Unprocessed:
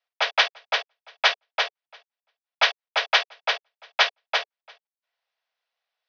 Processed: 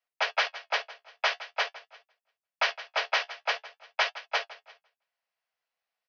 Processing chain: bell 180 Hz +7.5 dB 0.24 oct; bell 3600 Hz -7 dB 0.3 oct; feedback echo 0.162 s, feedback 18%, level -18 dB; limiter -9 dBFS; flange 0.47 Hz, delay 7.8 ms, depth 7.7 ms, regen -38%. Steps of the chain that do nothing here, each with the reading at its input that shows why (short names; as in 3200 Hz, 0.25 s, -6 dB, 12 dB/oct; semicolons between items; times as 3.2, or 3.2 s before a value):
bell 180 Hz: input band starts at 360 Hz